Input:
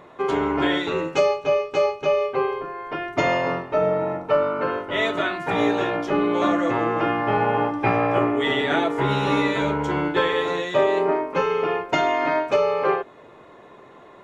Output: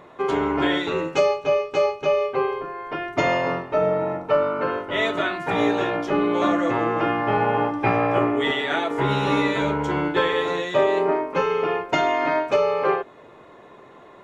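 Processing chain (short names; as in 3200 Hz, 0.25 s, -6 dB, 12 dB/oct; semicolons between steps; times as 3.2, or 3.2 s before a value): 8.51–8.91 low shelf 390 Hz -9.5 dB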